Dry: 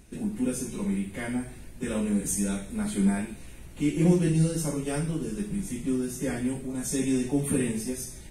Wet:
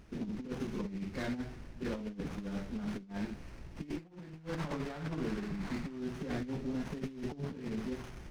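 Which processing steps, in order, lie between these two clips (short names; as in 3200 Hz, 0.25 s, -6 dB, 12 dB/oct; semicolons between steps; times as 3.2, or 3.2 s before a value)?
CVSD 32 kbps; 3.96–6 band shelf 1300 Hz +8.5 dB 2.3 oct; negative-ratio compressor -31 dBFS, ratio -0.5; running maximum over 9 samples; gain -6.5 dB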